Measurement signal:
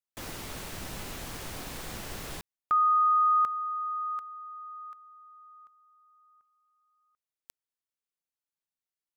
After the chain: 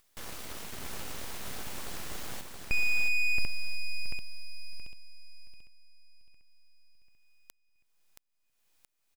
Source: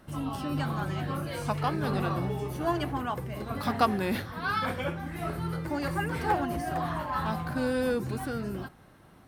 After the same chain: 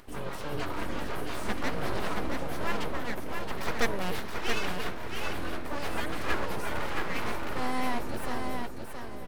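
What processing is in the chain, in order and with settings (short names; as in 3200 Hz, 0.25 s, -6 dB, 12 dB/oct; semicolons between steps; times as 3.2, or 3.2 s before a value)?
full-wave rectifier; feedback echo 0.674 s, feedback 24%, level -5 dB; upward compressor, threshold -49 dBFS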